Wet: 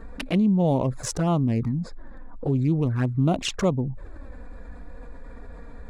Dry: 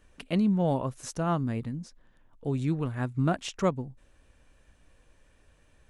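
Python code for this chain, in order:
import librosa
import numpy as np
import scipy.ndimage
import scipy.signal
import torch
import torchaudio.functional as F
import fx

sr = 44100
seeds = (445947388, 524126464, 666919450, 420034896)

y = fx.wiener(x, sr, points=15)
y = fx.env_flanger(y, sr, rest_ms=4.5, full_db=-24.5)
y = fx.env_flatten(y, sr, amount_pct=50)
y = y * 10.0 ** (4.0 / 20.0)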